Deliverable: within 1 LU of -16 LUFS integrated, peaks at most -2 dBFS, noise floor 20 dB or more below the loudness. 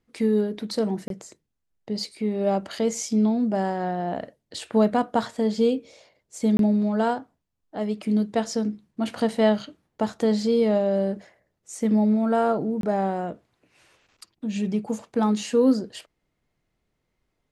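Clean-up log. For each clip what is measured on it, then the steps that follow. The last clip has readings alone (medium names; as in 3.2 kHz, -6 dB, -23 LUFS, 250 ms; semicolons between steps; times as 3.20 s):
dropouts 3; longest dropout 22 ms; loudness -24.5 LUFS; peak level -8.5 dBFS; loudness target -16.0 LUFS
-> interpolate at 1.08/6.57/12.81 s, 22 ms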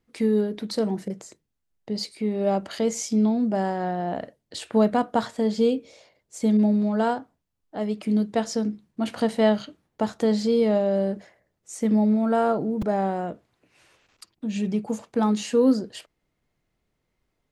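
dropouts 0; loudness -24.5 LUFS; peak level -8.5 dBFS; loudness target -16.0 LUFS
-> trim +8.5 dB; peak limiter -2 dBFS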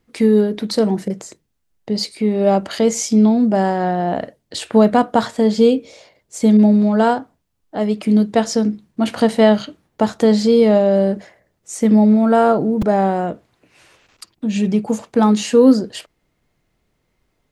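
loudness -16.0 LUFS; peak level -2.0 dBFS; noise floor -69 dBFS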